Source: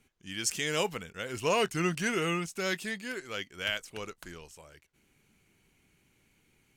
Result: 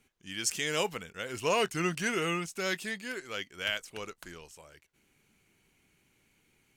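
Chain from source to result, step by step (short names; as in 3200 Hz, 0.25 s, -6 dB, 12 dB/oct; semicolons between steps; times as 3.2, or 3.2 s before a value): low shelf 230 Hz -4 dB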